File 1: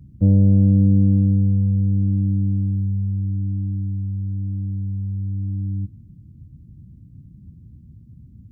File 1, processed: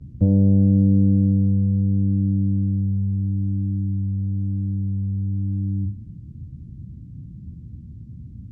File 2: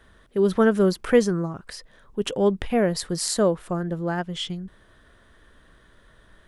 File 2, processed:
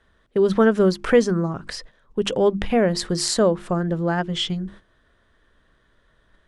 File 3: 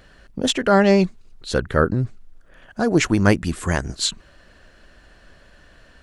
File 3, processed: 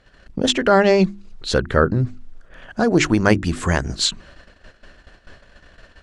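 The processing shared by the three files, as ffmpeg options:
-filter_complex "[0:a]lowpass=7.4k,bandreject=f=50:t=h:w=6,bandreject=f=100:t=h:w=6,bandreject=f=150:t=h:w=6,bandreject=f=200:t=h:w=6,bandreject=f=250:t=h:w=6,bandreject=f=300:t=h:w=6,bandreject=f=350:t=h:w=6,agate=range=-13dB:threshold=-48dB:ratio=16:detection=peak,asplit=2[a][b];[b]acompressor=threshold=-28dB:ratio=6,volume=1.5dB[c];[a][c]amix=inputs=2:normalize=0"

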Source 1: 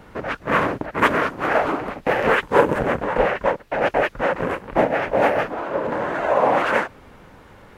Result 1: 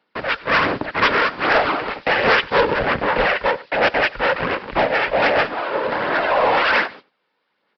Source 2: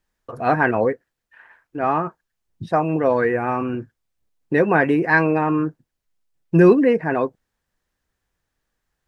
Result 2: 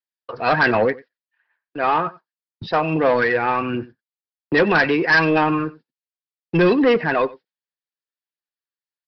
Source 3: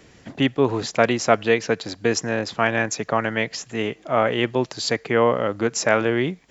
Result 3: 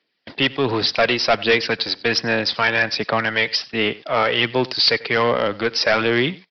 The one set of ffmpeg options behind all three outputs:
-filter_complex "[0:a]agate=range=-28dB:threshold=-39dB:ratio=16:detection=peak,acrossover=split=190[a][b];[a]aeval=exprs='sgn(val(0))*max(abs(val(0))-0.00447,0)':c=same[c];[b]crystalizer=i=8:c=0[d];[c][d]amix=inputs=2:normalize=0,aphaser=in_gain=1:out_gain=1:delay=2.3:decay=0.33:speed=1.3:type=sinusoidal,aresample=11025,asoftclip=type=tanh:threshold=-10dB,aresample=44100,asplit=2[e][f];[f]adelay=93.29,volume=-21dB,highshelf=f=4k:g=-2.1[g];[e][g]amix=inputs=2:normalize=0"

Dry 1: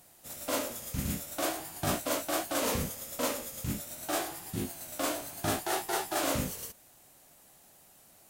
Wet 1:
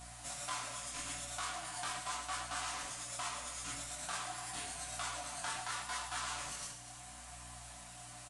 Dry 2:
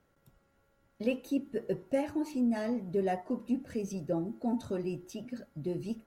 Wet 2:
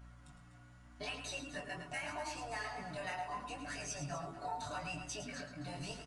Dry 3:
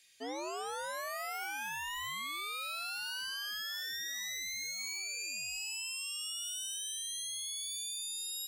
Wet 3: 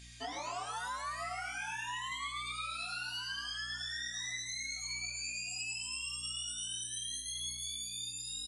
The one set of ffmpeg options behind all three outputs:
-filter_complex "[0:a]afftfilt=real='re*lt(hypot(re,im),0.1)':imag='im*lt(hypot(re,im),0.1)':win_size=1024:overlap=0.75,lowshelf=f=610:t=q:w=3:g=-9,bandreject=f=840:w=5.4,aecho=1:1:6.9:0.8,acompressor=threshold=-46dB:ratio=6,aeval=exprs='val(0)+0.000708*(sin(2*PI*60*n/s)+sin(2*PI*2*60*n/s)/2+sin(2*PI*3*60*n/s)/3+sin(2*PI*4*60*n/s)/4+sin(2*PI*5*60*n/s)/5)':c=same,flanger=delay=17.5:depth=6.2:speed=0.8,asplit=2[a][b];[b]aecho=0:1:107.9|247.8:0.355|0.251[c];[a][c]amix=inputs=2:normalize=0,aresample=22050,aresample=44100,volume=10dB"

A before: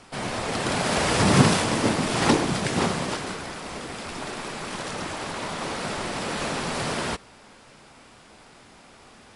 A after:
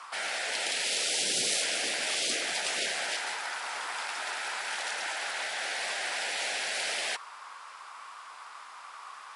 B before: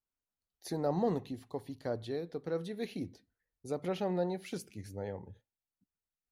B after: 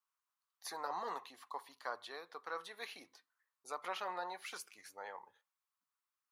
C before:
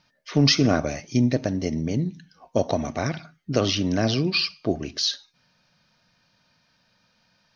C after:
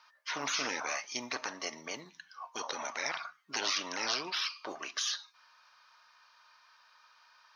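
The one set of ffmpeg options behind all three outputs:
-af "highpass=f=1.1k:t=q:w=4.9,afftfilt=real='re*lt(hypot(re,im),0.1)':imag='im*lt(hypot(re,im),0.1)':win_size=1024:overlap=0.75"

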